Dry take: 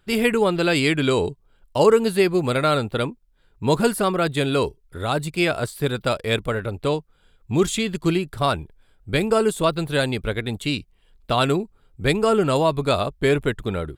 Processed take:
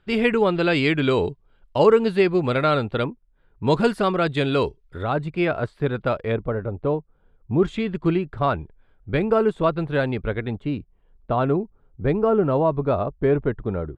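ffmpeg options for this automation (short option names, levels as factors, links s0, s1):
-af "asetnsamples=n=441:p=0,asendcmd='3.04 lowpass f 1800;3.67 lowpass f 4100;5.03 lowpass f 1900;6.32 lowpass f 1000;7.63 lowpass f 1900;10.55 lowpass f 1100',lowpass=3400"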